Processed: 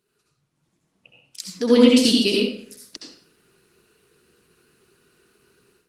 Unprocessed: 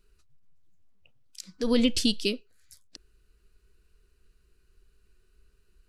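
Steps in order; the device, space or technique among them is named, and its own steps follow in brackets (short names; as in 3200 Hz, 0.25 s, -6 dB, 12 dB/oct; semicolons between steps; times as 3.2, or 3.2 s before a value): far-field microphone of a smart speaker (reverb RT60 0.60 s, pre-delay 62 ms, DRR -3 dB; HPF 130 Hz 24 dB/oct; AGC gain up to 11.5 dB; Opus 24 kbps 48000 Hz)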